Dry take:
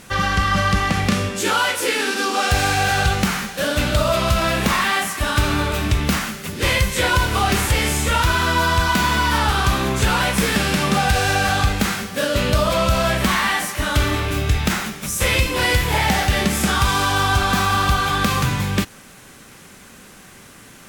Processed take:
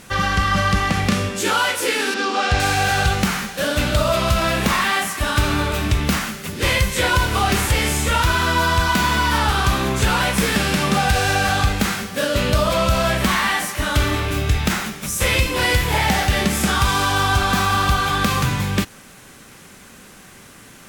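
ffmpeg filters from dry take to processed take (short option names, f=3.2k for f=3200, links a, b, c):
-filter_complex "[0:a]asettb=1/sr,asplit=3[a][b][c];[a]atrim=end=2.144[d];[b]atrim=start=2.14:end=2.6,asetpts=PTS-STARTPTS,afade=t=in:d=0.004:c=qsin,afade=t=out:st=0.456:d=0.004:c=qsin,lowpass=5.1k[e];[c]atrim=start=2.596[f];[d][e]acrossfade=d=0.004:c1=hsin:c2=qsin[g];[g][f]acrossfade=d=0.004:c1=qsin:c2=hsin"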